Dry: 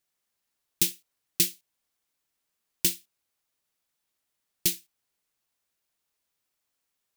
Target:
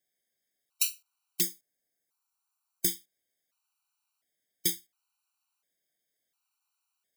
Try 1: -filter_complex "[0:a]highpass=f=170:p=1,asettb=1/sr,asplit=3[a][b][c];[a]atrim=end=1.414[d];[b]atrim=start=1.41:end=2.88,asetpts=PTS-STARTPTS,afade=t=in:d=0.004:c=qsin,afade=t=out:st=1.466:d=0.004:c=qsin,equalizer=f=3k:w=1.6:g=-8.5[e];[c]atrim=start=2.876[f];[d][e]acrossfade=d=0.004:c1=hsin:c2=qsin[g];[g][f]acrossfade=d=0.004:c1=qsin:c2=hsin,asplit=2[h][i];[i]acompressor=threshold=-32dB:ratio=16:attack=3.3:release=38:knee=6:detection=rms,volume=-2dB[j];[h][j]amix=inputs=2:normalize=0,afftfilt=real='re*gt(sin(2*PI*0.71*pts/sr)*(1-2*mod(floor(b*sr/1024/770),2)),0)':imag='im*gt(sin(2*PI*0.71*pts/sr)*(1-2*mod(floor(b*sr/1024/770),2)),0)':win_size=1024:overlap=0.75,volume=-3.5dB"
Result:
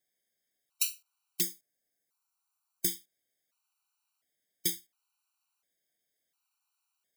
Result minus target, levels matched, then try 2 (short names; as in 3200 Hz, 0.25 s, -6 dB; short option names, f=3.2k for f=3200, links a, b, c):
compressor: peak gain reduction +11 dB
-filter_complex "[0:a]highpass=f=170:p=1,asettb=1/sr,asplit=3[a][b][c];[a]atrim=end=1.414[d];[b]atrim=start=1.41:end=2.88,asetpts=PTS-STARTPTS,afade=t=in:d=0.004:c=qsin,afade=t=out:st=1.466:d=0.004:c=qsin,equalizer=f=3k:w=1.6:g=-8.5[e];[c]atrim=start=2.876[f];[d][e]acrossfade=d=0.004:c1=hsin:c2=qsin[g];[g][f]acrossfade=d=0.004:c1=qsin:c2=hsin,asplit=2[h][i];[i]acompressor=threshold=-20dB:ratio=16:attack=3.3:release=38:knee=6:detection=rms,volume=-2dB[j];[h][j]amix=inputs=2:normalize=0,afftfilt=real='re*gt(sin(2*PI*0.71*pts/sr)*(1-2*mod(floor(b*sr/1024/770),2)),0)':imag='im*gt(sin(2*PI*0.71*pts/sr)*(1-2*mod(floor(b*sr/1024/770),2)),0)':win_size=1024:overlap=0.75,volume=-3.5dB"